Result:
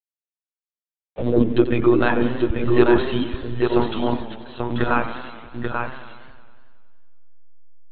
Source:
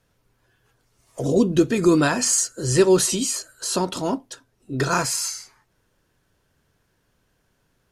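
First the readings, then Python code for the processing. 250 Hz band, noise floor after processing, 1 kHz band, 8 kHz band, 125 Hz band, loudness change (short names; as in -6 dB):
+2.0 dB, under -85 dBFS, +2.5 dB, under -40 dB, +1.0 dB, -0.5 dB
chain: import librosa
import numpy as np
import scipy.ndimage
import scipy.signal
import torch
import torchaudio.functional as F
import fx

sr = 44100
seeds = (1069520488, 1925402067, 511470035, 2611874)

p1 = fx.delta_hold(x, sr, step_db=-37.0)
p2 = fx.air_absorb(p1, sr, metres=61.0)
p3 = 10.0 ** (-16.5 / 20.0) * np.tanh(p2 / 10.0 ** (-16.5 / 20.0))
p4 = p2 + (p3 * librosa.db_to_amplitude(-4.5))
p5 = fx.dereverb_blind(p4, sr, rt60_s=0.76)
p6 = fx.lpc_monotone(p5, sr, seeds[0], pitch_hz=120.0, order=16)
p7 = p6 + fx.echo_single(p6, sr, ms=837, db=-5.0, dry=0)
p8 = fx.echo_warbled(p7, sr, ms=92, feedback_pct=70, rate_hz=2.8, cents=137, wet_db=-12.5)
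y = p8 * librosa.db_to_amplitude(-1.0)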